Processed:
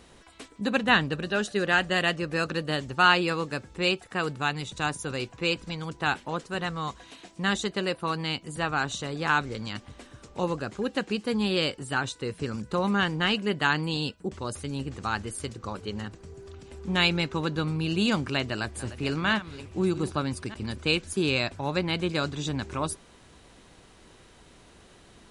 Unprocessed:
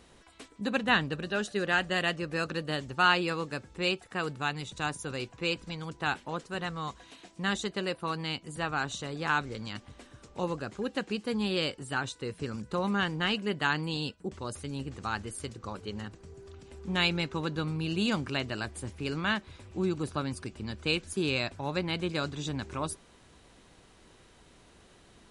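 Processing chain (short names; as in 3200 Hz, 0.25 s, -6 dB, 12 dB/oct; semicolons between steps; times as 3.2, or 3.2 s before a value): 18.12–20.78 reverse delay 0.606 s, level -13.5 dB; gain +4 dB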